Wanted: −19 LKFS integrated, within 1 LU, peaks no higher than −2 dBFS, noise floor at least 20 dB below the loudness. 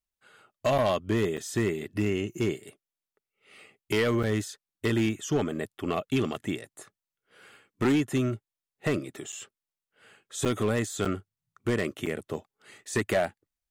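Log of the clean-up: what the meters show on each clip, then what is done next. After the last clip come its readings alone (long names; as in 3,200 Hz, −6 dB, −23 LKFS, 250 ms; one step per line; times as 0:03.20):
share of clipped samples 1.0%; peaks flattened at −19.0 dBFS; number of dropouts 7; longest dropout 6.1 ms; integrated loudness −29.5 LKFS; sample peak −19.0 dBFS; target loudness −19.0 LKFS
→ clipped peaks rebuilt −19 dBFS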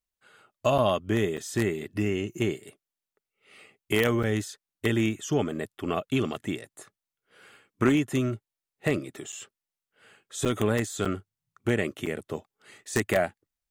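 share of clipped samples 0.0%; number of dropouts 7; longest dropout 6.1 ms
→ repair the gap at 0:00.78/0:01.37/0:04.23/0:09.32/0:10.45/0:11.05/0:12.06, 6.1 ms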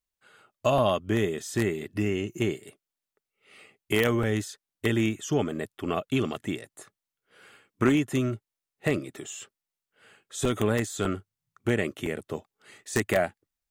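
number of dropouts 0; integrated loudness −28.5 LKFS; sample peak −10.0 dBFS; target loudness −19.0 LKFS
→ level +9.5 dB
brickwall limiter −2 dBFS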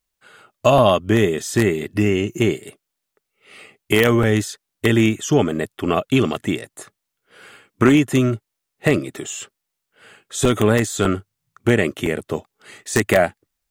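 integrated loudness −19.0 LKFS; sample peak −2.0 dBFS; background noise floor −80 dBFS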